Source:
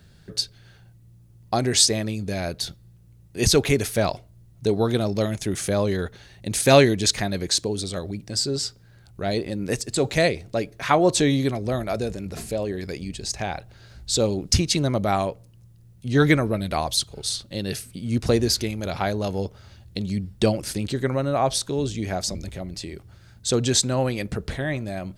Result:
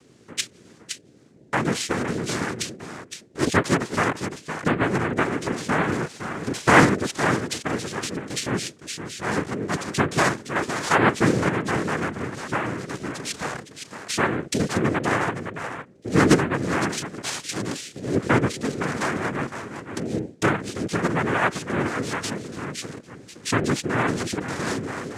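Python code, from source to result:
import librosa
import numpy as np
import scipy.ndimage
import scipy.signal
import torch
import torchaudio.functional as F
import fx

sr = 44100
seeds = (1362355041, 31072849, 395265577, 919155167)

y = x + 10.0 ** (-9.0 / 20.0) * np.pad(x, (int(512 * sr / 1000.0), 0))[:len(x)]
y = fx.env_lowpass_down(y, sr, base_hz=2400.0, full_db=-18.5)
y = fx.noise_vocoder(y, sr, seeds[0], bands=3)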